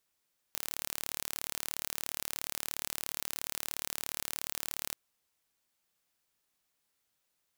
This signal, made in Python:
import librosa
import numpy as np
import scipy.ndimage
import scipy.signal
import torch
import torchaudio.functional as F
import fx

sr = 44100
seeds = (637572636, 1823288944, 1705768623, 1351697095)

y = 10.0 ** (-8.5 / 20.0) * (np.mod(np.arange(round(4.39 * sr)), round(sr / 37.0)) == 0)